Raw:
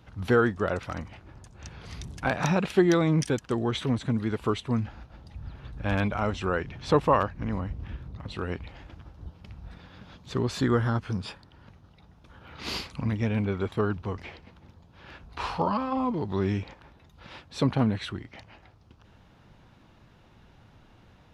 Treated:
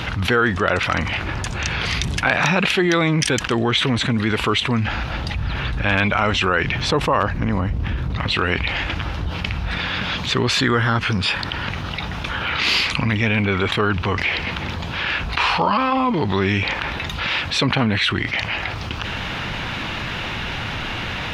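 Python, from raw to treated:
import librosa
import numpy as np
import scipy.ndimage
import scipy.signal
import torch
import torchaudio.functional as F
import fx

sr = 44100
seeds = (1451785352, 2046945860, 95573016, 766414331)

y = fx.peak_eq(x, sr, hz=2500.0, db=fx.steps((0.0, 12.5), (6.79, 4.5), (8.1, 14.5)), octaves=2.1)
y = fx.env_flatten(y, sr, amount_pct=70)
y = y * librosa.db_to_amplitude(-1.0)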